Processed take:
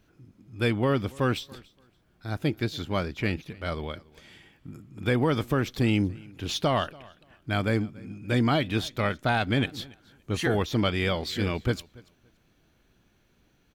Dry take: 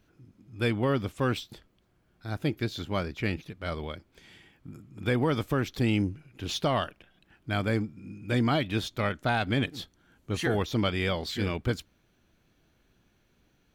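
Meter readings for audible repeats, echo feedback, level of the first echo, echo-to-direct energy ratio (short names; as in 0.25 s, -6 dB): 1, no steady repeat, -23.5 dB, -23.5 dB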